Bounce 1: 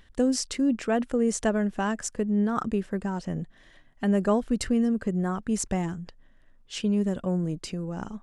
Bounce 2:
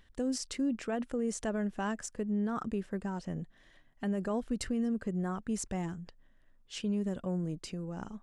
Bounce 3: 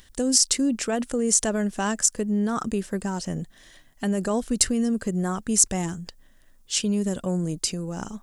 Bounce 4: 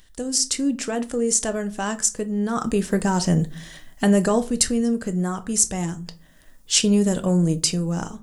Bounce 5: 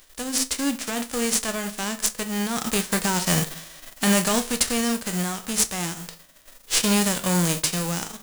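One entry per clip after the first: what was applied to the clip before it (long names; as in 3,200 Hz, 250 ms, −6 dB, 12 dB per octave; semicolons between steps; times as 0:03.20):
de-essing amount 35%; brickwall limiter −18.5 dBFS, peak gain reduction 6 dB; level −6.5 dB
bass and treble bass −1 dB, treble +15 dB; level +8.5 dB
automatic gain control gain up to 13 dB; rectangular room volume 180 cubic metres, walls furnished, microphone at 0.53 metres; level −3.5 dB
spectral envelope flattened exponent 0.3; level −2.5 dB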